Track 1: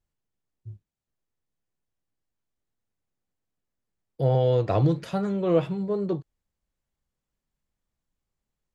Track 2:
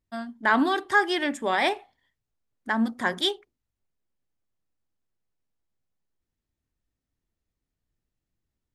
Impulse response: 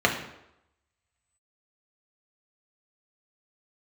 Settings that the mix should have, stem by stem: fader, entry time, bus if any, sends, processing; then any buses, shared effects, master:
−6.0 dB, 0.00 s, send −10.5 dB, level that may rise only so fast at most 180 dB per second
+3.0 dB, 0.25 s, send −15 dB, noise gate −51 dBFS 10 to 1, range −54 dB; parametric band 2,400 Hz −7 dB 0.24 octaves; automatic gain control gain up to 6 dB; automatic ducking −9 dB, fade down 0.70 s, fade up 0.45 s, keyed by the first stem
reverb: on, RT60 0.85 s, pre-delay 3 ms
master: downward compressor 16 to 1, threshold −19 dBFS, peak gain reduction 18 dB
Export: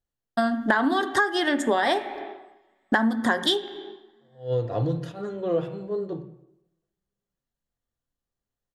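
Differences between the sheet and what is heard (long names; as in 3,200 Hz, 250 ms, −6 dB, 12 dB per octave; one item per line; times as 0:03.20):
stem 2 +3.0 dB → +12.5 dB
reverb return −7.0 dB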